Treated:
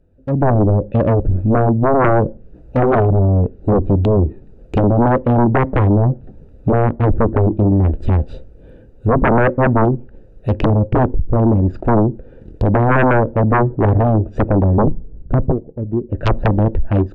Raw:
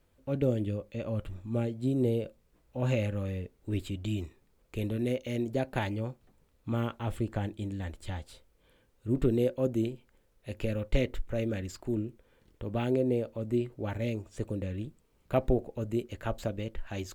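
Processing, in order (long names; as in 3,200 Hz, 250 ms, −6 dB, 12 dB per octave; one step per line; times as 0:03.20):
adaptive Wiener filter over 41 samples
treble cut that deepens with the level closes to 430 Hz, closed at −29.5 dBFS
0:14.78–0:15.52: spectral tilt −4 dB per octave
automatic gain control gain up to 14.5 dB
sine wavefolder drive 18 dB, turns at 0 dBFS
on a send: head-to-tape spacing loss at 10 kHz 35 dB + convolution reverb RT60 0.45 s, pre-delay 3 ms, DRR 30.5 dB
on the sum: level −9 dB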